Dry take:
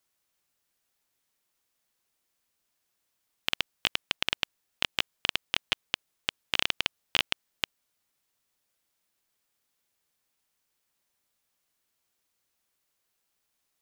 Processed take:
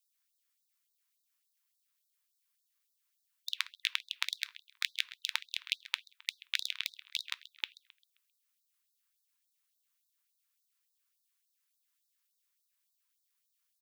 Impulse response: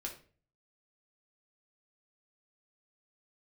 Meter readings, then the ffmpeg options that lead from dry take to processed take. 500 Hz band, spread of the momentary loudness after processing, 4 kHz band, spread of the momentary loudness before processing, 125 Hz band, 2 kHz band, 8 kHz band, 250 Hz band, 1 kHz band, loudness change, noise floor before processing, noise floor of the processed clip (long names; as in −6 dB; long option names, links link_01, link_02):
below −40 dB, 7 LU, −6.5 dB, 7 LU, below −40 dB, −6.0 dB, −3.5 dB, below −40 dB, −12.0 dB, −6.0 dB, −79 dBFS, −81 dBFS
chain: -filter_complex "[0:a]highshelf=frequency=12000:gain=6,asplit=2[link_01][link_02];[link_02]adelay=132,lowpass=frequency=3700:poles=1,volume=-15dB,asplit=2[link_03][link_04];[link_04]adelay=132,lowpass=frequency=3700:poles=1,volume=0.51,asplit=2[link_05][link_06];[link_06]adelay=132,lowpass=frequency=3700:poles=1,volume=0.51,asplit=2[link_07][link_08];[link_08]adelay=132,lowpass=frequency=3700:poles=1,volume=0.51,asplit=2[link_09][link_10];[link_10]adelay=132,lowpass=frequency=3700:poles=1,volume=0.51[link_11];[link_01][link_03][link_05][link_07][link_09][link_11]amix=inputs=6:normalize=0,aeval=exprs='val(0)*sin(2*PI*570*n/s)':channel_layout=same,asplit=2[link_12][link_13];[1:a]atrim=start_sample=2205,asetrate=48510,aresample=44100[link_14];[link_13][link_14]afir=irnorm=-1:irlink=0,volume=-12.5dB[link_15];[link_12][link_15]amix=inputs=2:normalize=0,afftfilt=real='re*gte(b*sr/1024,870*pow(3700/870,0.5+0.5*sin(2*PI*3.5*pts/sr)))':imag='im*gte(b*sr/1024,870*pow(3700/870,0.5+0.5*sin(2*PI*3.5*pts/sr)))':win_size=1024:overlap=0.75,volume=-3dB"